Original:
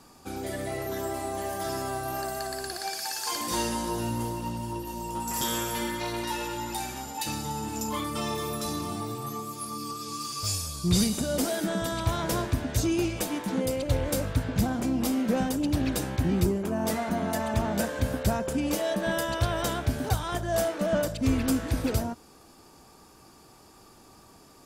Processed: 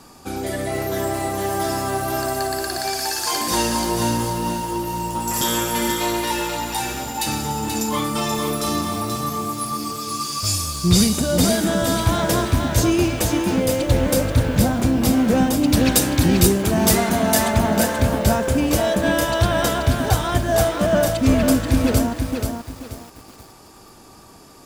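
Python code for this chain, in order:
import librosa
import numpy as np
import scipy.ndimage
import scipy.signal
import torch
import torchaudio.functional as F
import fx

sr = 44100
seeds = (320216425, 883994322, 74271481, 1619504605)

y = fx.high_shelf(x, sr, hz=2500.0, db=9.5, at=(15.72, 17.5))
y = fx.echo_crushed(y, sr, ms=482, feedback_pct=35, bits=8, wet_db=-5)
y = y * 10.0 ** (8.0 / 20.0)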